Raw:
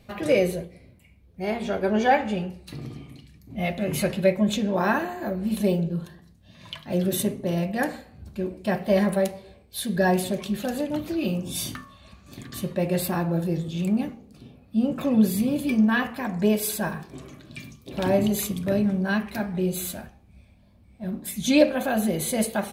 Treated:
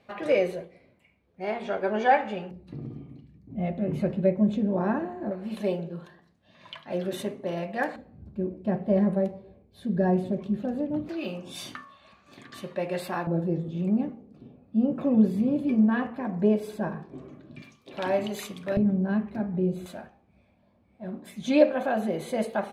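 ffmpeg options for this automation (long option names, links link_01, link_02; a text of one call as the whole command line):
ffmpeg -i in.wav -af "asetnsamples=nb_out_samples=441:pad=0,asendcmd='2.51 bandpass f 230;5.31 bandpass f 1000;7.96 bandpass f 220;11.09 bandpass f 1200;13.27 bandpass f 350;17.62 bandpass f 1300;18.77 bandpass f 240;19.86 bandpass f 700',bandpass=frequency=1000:width_type=q:width=0.55:csg=0" out.wav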